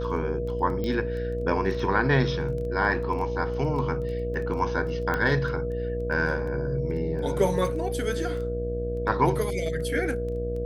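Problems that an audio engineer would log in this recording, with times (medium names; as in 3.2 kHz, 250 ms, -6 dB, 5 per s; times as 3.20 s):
buzz 60 Hz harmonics 11 -32 dBFS
crackle 11 per s -34 dBFS
whine 480 Hz -30 dBFS
0.84 s: pop -19 dBFS
5.14 s: pop -14 dBFS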